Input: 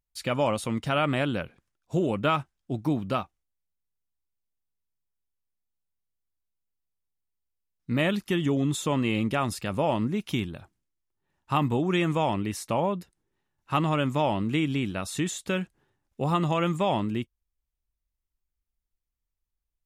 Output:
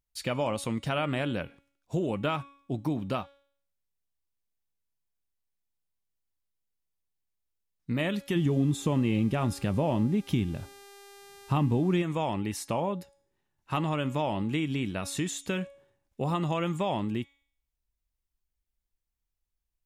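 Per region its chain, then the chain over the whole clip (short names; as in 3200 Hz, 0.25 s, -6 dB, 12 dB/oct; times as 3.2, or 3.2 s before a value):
8.35–12.01 low shelf 420 Hz +10.5 dB + buzz 400 Hz, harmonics 34, -51 dBFS
whole clip: bell 1300 Hz -3 dB 0.32 oct; de-hum 279.7 Hz, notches 35; compressor 2:1, threshold -28 dBFS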